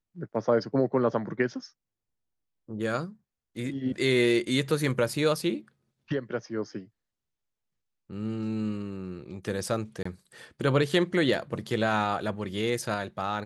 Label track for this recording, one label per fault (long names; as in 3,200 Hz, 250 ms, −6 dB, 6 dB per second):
10.030000	10.050000	drop-out 24 ms